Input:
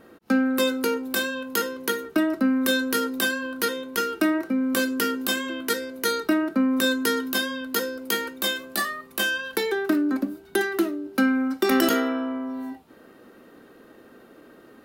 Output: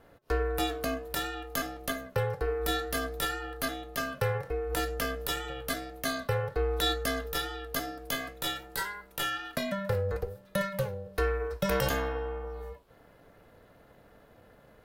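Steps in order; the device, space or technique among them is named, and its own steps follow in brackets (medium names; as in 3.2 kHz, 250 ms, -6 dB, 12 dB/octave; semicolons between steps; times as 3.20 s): 6.50–7.03 s: peaking EQ 3.9 kHz +6.5 dB 0.61 oct; alien voice (ring modulator 200 Hz; flange 0.56 Hz, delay 2.6 ms, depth 6.7 ms, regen -85%)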